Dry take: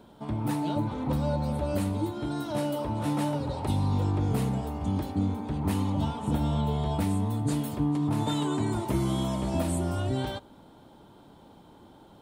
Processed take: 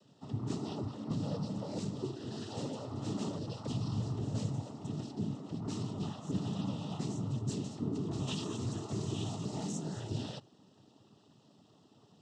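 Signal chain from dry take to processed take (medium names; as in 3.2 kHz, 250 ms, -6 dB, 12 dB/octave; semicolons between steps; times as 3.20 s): FFT filter 140 Hz 0 dB, 2.2 kHz -11 dB, 4.1 kHz +5 dB; noise-vocoded speech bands 12; trim -6 dB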